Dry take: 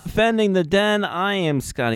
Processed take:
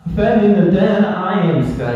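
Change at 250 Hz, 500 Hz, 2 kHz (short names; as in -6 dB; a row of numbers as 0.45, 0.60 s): +8.5, +4.5, -2.0 dB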